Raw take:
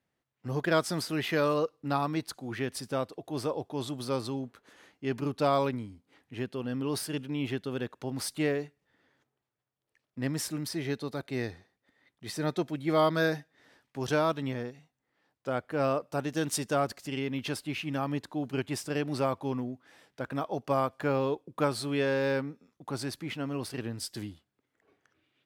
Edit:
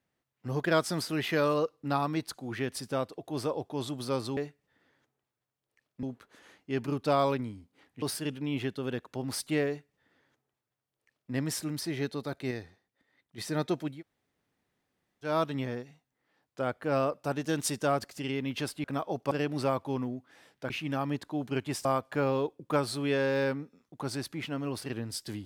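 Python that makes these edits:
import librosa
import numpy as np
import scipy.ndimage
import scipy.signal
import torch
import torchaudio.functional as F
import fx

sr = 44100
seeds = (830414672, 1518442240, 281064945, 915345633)

y = fx.edit(x, sr, fx.cut(start_s=6.36, length_s=0.54),
    fx.duplicate(start_s=8.55, length_s=1.66, to_s=4.37),
    fx.clip_gain(start_s=11.39, length_s=0.87, db=-4.0),
    fx.room_tone_fill(start_s=12.83, length_s=1.34, crossfade_s=0.16),
    fx.swap(start_s=17.72, length_s=1.15, other_s=20.26, other_length_s=0.47), tone=tone)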